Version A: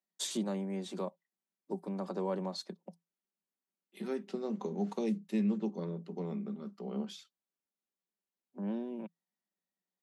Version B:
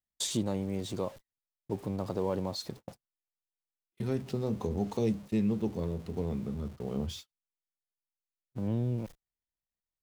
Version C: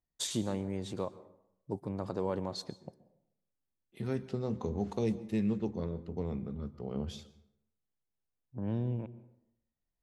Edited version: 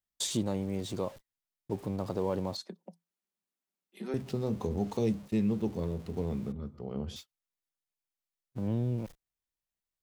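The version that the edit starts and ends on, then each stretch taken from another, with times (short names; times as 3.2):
B
2.57–4.14 from A
6.52–7.16 from C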